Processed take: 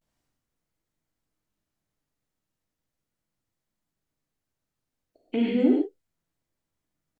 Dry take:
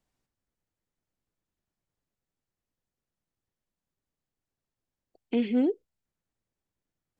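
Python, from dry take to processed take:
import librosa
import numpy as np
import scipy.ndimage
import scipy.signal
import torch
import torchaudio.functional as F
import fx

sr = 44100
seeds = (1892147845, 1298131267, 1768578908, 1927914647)

y = fx.rev_gated(x, sr, seeds[0], gate_ms=170, shape='flat', drr_db=-1.5)
y = fx.vibrato(y, sr, rate_hz=0.35, depth_cents=49.0)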